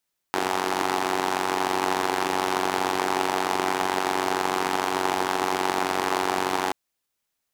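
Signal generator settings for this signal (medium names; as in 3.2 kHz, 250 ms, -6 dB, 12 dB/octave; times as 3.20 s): four-cylinder engine model, steady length 6.38 s, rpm 2800, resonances 380/800 Hz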